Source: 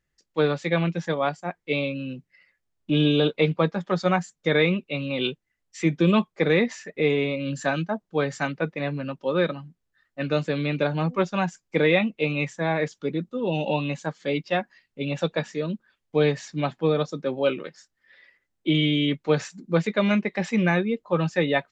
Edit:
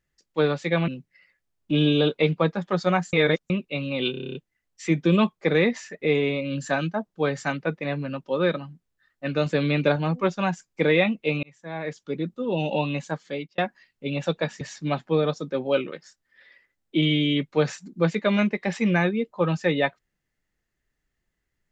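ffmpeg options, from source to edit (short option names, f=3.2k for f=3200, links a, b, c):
-filter_complex "[0:a]asplit=17[a][b][c][d][e][f][g][h][i][j][k][l][m][n][o][p][q];[a]atrim=end=0.882[r];[b]atrim=start=2.068:end=4.322[s];[c]atrim=start=4.318:end=4.692,asetpts=PTS-STARTPTS,areverse[t];[d]atrim=start=4.688:end=5.332[u];[e]atrim=start=5.298:end=5.332[v];[f]atrim=start=5.298:end=5.332[w];[g]atrim=start=5.298:end=5.332[x];[h]atrim=start=5.298:end=5.332[y];[i]atrim=start=5.298:end=5.332[z];[j]atrim=start=5.298:end=5.332[aa];[k]atrim=start=5.298:end=5.332[ab];[l]atrim=start=5.298:end=10.412[ac];[m]atrim=start=10.408:end=10.912,asetpts=PTS-STARTPTS,volume=3dB[ad];[n]atrim=start=10.908:end=12.38,asetpts=PTS-STARTPTS,afade=t=out:st=1.468:d=0.004:c=hsin[ae];[o]atrim=start=12.38:end=14.53,asetpts=PTS-STARTPTS,afade=t=in:d=0.87,afade=t=out:st=1.75:d=0.4[af];[p]atrim=start=14.53:end=15.562,asetpts=PTS-STARTPTS,afade=t=in:d=0.004:c=hsin[ag];[q]atrim=start=16.328[ah];[r][s]acrossfade=d=0.004:c1=hsin:c2=hsin[ai];[ai][t]acrossfade=d=0.004:c1=hsin:c2=hsin[aj];[aj][u]acrossfade=d=0.004:c1=hsin:c2=hsin[ak];[ak][v]acrossfade=d=0.004:c1=hsin:c2=hsin[al];[al][w]acrossfade=d=0.004:c1=hsin:c2=hsin[am];[am][x]acrossfade=d=0.004:c1=hsin:c2=hsin[an];[an][y]acrossfade=d=0.004:c1=hsin:c2=hsin[ao];[ao][z]acrossfade=d=0.004:c1=hsin:c2=hsin[ap];[ap][aa]acrossfade=d=0.004:c1=hsin:c2=hsin[aq];[aq][ab]acrossfade=d=0.004:c1=hsin:c2=hsin[ar];[ar][ac]acrossfade=d=0.004:c1=hsin:c2=hsin[as];[as][ad]acrossfade=d=0.004:c1=hsin:c2=hsin[at];[ae][af][ag]concat=n=3:v=0:a=1[au];[at][au]acrossfade=d=0.004:c1=hsin:c2=hsin[av];[av][ah]acrossfade=d=0.004:c1=hsin:c2=hsin"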